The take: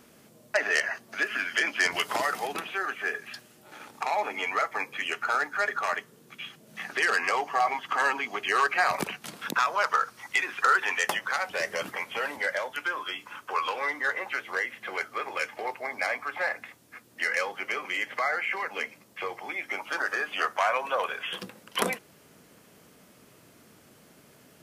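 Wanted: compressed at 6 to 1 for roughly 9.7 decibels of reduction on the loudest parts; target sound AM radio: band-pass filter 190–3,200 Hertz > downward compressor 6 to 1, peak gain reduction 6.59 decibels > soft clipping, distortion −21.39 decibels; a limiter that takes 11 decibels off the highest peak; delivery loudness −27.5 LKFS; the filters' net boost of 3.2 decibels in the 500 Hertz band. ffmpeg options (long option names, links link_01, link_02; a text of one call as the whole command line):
ffmpeg -i in.wav -af "equalizer=frequency=500:width_type=o:gain=4,acompressor=threshold=-29dB:ratio=6,alimiter=level_in=1dB:limit=-24dB:level=0:latency=1,volume=-1dB,highpass=190,lowpass=3200,acompressor=threshold=-36dB:ratio=6,asoftclip=threshold=-30.5dB,volume=13.5dB" out.wav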